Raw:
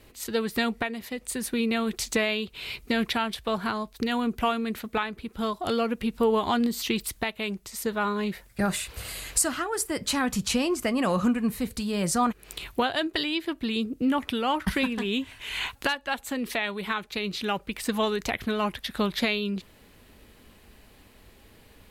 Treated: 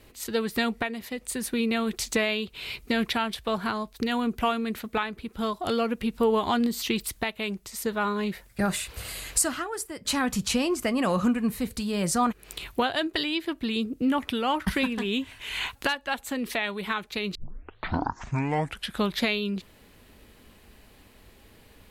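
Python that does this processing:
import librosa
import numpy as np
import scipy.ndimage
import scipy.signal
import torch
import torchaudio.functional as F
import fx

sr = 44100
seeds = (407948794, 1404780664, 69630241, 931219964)

y = fx.edit(x, sr, fx.fade_out_to(start_s=9.45, length_s=0.6, floor_db=-12.5),
    fx.tape_start(start_s=17.35, length_s=1.67), tone=tone)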